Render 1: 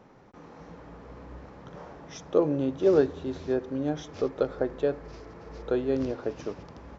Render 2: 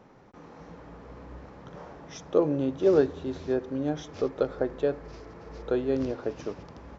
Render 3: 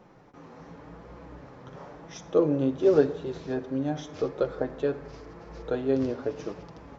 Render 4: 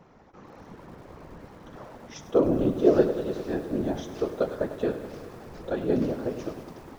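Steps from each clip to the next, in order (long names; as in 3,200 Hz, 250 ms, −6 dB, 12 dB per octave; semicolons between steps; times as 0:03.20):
no processing that can be heard
flanger 0.91 Hz, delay 5.5 ms, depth 2.6 ms, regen −26%; on a send at −14.5 dB: convolution reverb RT60 0.85 s, pre-delay 36 ms; on the sum: level +3.5 dB
random phases in short frames; feedback echo at a low word length 101 ms, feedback 80%, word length 8 bits, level −13 dB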